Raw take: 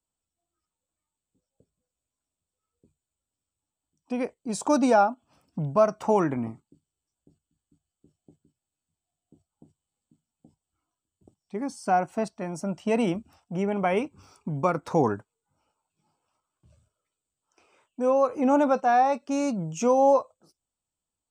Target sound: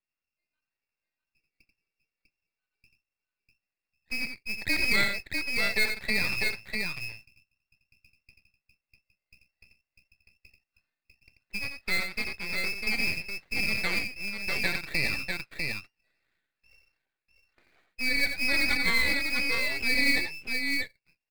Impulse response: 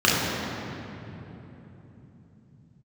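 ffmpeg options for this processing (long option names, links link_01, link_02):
-filter_complex "[0:a]lowpass=frequency=2400:width_type=q:width=0.5098,lowpass=frequency=2400:width_type=q:width=0.6013,lowpass=frequency=2400:width_type=q:width=0.9,lowpass=frequency=2400:width_type=q:width=2.563,afreqshift=-2800,asplit=2[link_01][link_02];[link_02]acompressor=threshold=-30dB:ratio=12,volume=-2dB[link_03];[link_01][link_03]amix=inputs=2:normalize=0,asettb=1/sr,asplit=3[link_04][link_05][link_06];[link_04]atrim=end=4.184[link_07];[link_05]atrim=start=4.18:end=4.76,asetpts=PTS-STARTPTS,afade=type=in:duration=0.004:curve=qsin,afade=type=out:start_time=0.576:duration=0.004:curve=qsin,highpass=frequency=1400:width=0.5412,highpass=frequency=1400:width=1.3066[link_08];[link_06]atrim=start=4.756[link_09];[link_07][link_08]acrossfade=duration=0.004:curve1=hsin:curve2=qsin[link_10];[link_10][link_09]acrossfade=duration=0.004:curve1=qsin:curve2=hsin,acrusher=bits=4:mode=log:mix=0:aa=0.000001,acrossover=split=2100[link_11][link_12];[link_11]aeval=exprs='val(0)*(1-0.7/2+0.7/2*cos(2*PI*5.4*n/s))':channel_layout=same[link_13];[link_12]aeval=exprs='val(0)*(1-0.7/2-0.7/2*cos(2*PI*5.4*n/s))':channel_layout=same[link_14];[link_13][link_14]amix=inputs=2:normalize=0,asplit=2[link_15][link_16];[link_16]aecho=0:1:87|648:0.447|0.631[link_17];[link_15][link_17]amix=inputs=2:normalize=0,aeval=exprs='max(val(0),0)':channel_layout=same"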